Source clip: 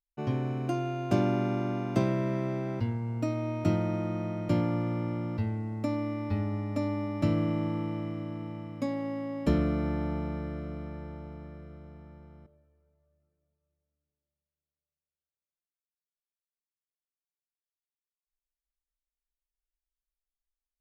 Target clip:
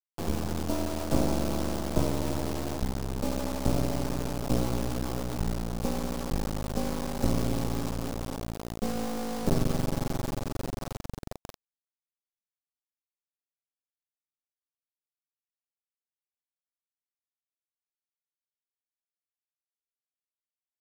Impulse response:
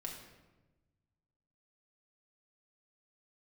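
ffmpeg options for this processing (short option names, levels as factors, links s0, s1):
-filter_complex "[0:a]afreqshift=-51,asplit=2[s0][s1];[1:a]atrim=start_sample=2205,afade=t=out:st=0.31:d=0.01,atrim=end_sample=14112,lowpass=2400[s2];[s1][s2]afir=irnorm=-1:irlink=0,volume=0.237[s3];[s0][s3]amix=inputs=2:normalize=0,acrusher=bits=3:dc=4:mix=0:aa=0.000001,firequalizer=gain_entry='entry(700,0);entry(1900,-8);entry(5000,0)':delay=0.05:min_phase=1,volume=1.41"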